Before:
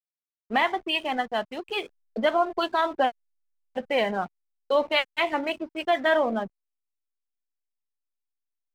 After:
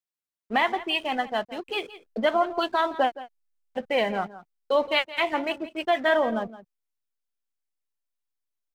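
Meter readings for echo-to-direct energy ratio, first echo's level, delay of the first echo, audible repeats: -16.0 dB, -16.0 dB, 169 ms, 1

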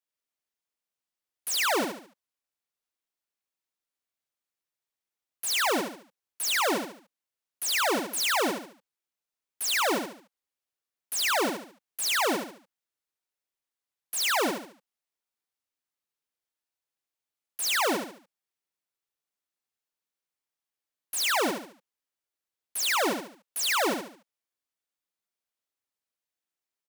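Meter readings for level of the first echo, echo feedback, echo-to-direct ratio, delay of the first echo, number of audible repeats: -5.5 dB, 37%, -5.0 dB, 72 ms, 4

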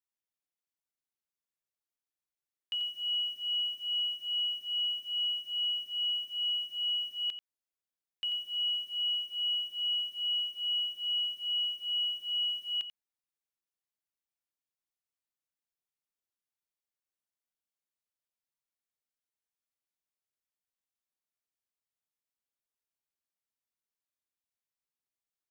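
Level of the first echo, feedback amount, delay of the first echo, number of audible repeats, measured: -10.0 dB, no regular repeats, 89 ms, 1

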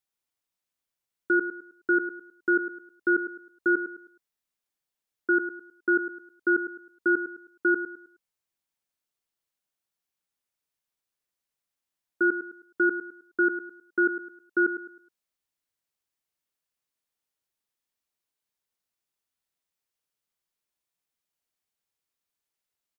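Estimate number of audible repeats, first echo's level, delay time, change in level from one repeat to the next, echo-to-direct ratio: 3, -10.5 dB, 105 ms, -9.5 dB, -10.0 dB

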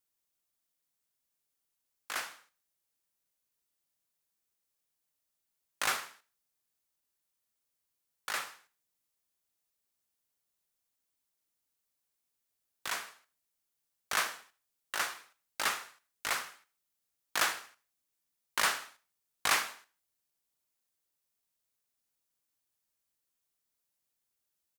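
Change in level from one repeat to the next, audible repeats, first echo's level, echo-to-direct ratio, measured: -5.5 dB, 2, -22.0 dB, -21.0 dB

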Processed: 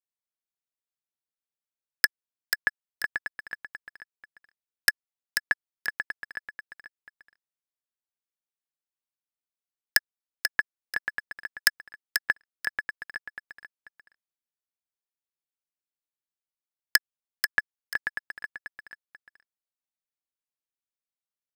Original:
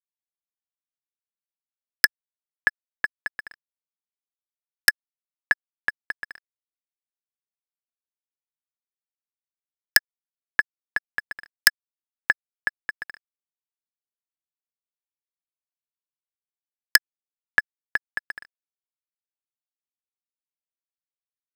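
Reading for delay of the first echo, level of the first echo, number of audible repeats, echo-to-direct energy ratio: 488 ms, -6.5 dB, 2, -6.0 dB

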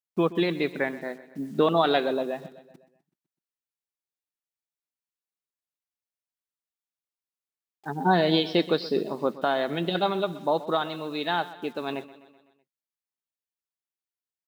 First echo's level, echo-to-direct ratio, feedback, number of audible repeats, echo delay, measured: -17.0 dB, -15.5 dB, 56%, 4, 126 ms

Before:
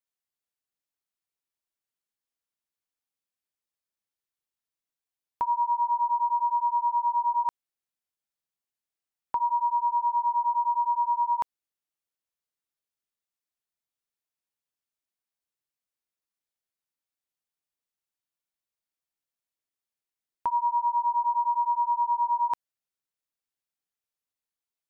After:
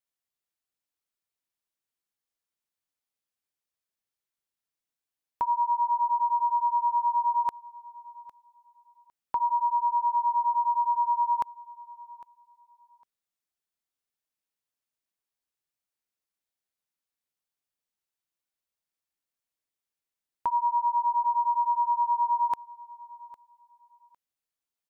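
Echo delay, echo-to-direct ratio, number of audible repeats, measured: 805 ms, -20.5 dB, 2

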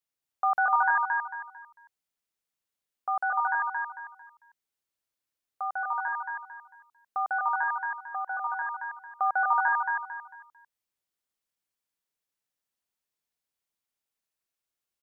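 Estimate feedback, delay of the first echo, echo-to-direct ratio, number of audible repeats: 33%, 224 ms, -2.5 dB, 4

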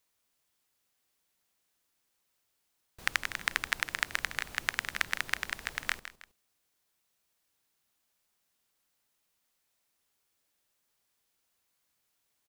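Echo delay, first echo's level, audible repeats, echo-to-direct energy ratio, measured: 160 ms, -13.0 dB, 2, -12.5 dB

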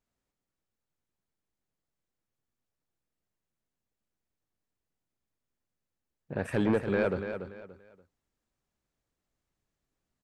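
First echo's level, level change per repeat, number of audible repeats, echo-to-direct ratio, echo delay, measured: -8.5 dB, -11.0 dB, 3, -8.0 dB, 288 ms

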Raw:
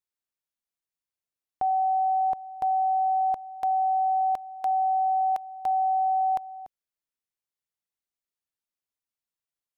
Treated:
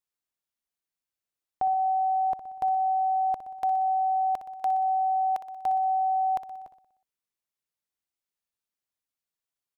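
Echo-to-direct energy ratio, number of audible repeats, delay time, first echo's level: -10.0 dB, 5, 61 ms, -12.0 dB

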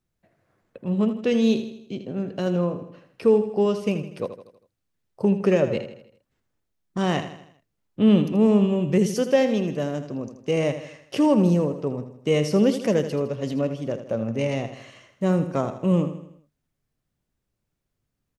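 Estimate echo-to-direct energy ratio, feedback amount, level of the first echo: -9.5 dB, 48%, -10.5 dB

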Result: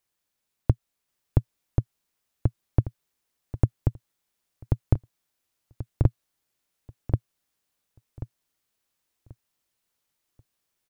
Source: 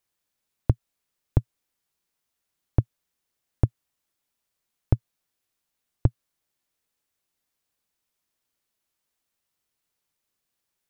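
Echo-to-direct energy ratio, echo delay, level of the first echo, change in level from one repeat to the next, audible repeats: -2.5 dB, 1085 ms, -3.0 dB, -11.5 dB, 3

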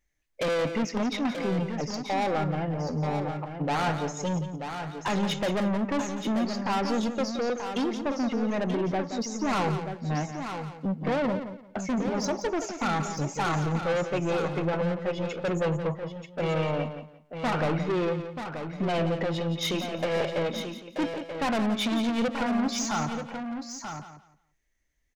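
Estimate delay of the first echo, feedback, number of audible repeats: 173 ms, no regular repeats, 5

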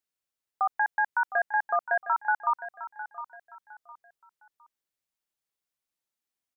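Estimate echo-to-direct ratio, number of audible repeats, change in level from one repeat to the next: -12.5 dB, 3, -10.0 dB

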